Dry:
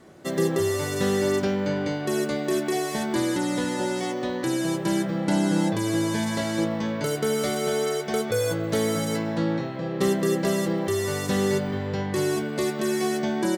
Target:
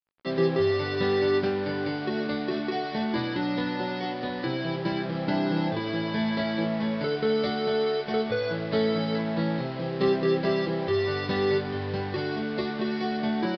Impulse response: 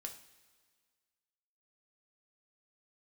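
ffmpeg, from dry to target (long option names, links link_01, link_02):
-filter_complex "[0:a]asplit=2[link_01][link_02];[link_02]adelay=23,volume=-6dB[link_03];[link_01][link_03]amix=inputs=2:normalize=0,acrusher=bits=5:mix=0:aa=0.5,aresample=11025,aresample=44100,volume=-2.5dB"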